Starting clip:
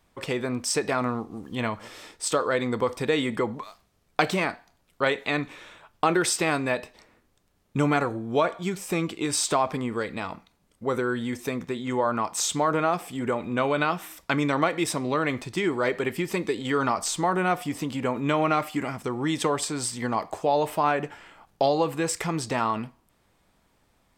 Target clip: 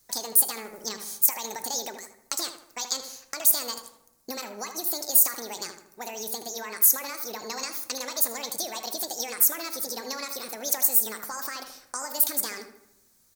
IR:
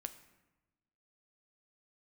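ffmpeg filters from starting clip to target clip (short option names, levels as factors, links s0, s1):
-filter_complex "[0:a]acompressor=threshold=0.0562:ratio=6,asetrate=79821,aresample=44100,asplit=2[s0][s1];[s1]adelay=78,lowpass=f=2100:p=1,volume=0.422,asplit=2[s2][s3];[s3]adelay=78,lowpass=f=2100:p=1,volume=0.48,asplit=2[s4][s5];[s5]adelay=78,lowpass=f=2100:p=1,volume=0.48,asplit=2[s6][s7];[s7]adelay=78,lowpass=f=2100:p=1,volume=0.48,asplit=2[s8][s9];[s9]adelay=78,lowpass=f=2100:p=1,volume=0.48,asplit=2[s10][s11];[s11]adelay=78,lowpass=f=2100:p=1,volume=0.48[s12];[s2][s4][s6][s8][s10][s12]amix=inputs=6:normalize=0[s13];[s0][s13]amix=inputs=2:normalize=0,aexciter=amount=10.5:drive=2.5:freq=4400,asplit=2[s14][s15];[1:a]atrim=start_sample=2205[s16];[s15][s16]afir=irnorm=-1:irlink=0,volume=1.5[s17];[s14][s17]amix=inputs=2:normalize=0,volume=0.188"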